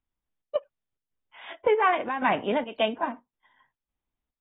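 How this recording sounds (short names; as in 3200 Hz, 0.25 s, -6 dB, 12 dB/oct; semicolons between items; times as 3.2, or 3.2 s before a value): chopped level 1.8 Hz, depth 60%, duty 75%; AAC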